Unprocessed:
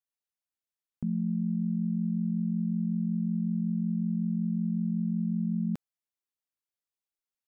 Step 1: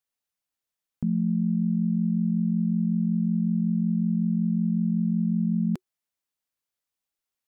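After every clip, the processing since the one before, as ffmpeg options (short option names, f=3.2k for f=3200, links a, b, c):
-af "bandreject=f=370:w=12,volume=5dB"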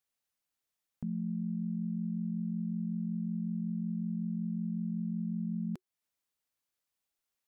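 -af "alimiter=level_in=5dB:limit=-24dB:level=0:latency=1:release=313,volume=-5dB"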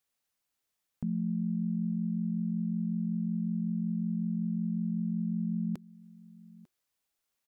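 -af "aecho=1:1:897:0.0841,volume=3.5dB"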